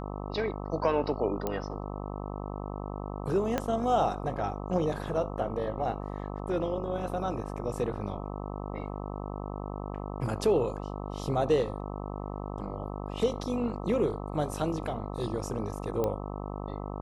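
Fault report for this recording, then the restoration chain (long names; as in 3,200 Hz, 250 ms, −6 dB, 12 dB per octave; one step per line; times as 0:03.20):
mains buzz 50 Hz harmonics 26 −37 dBFS
0:01.47: click −17 dBFS
0:03.58: click −14 dBFS
0:16.04: click −17 dBFS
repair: click removal
hum removal 50 Hz, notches 26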